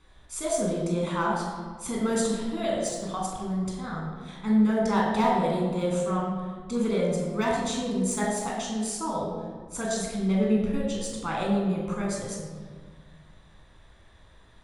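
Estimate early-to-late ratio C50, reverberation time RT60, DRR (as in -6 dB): 1.0 dB, 1.6 s, -2.5 dB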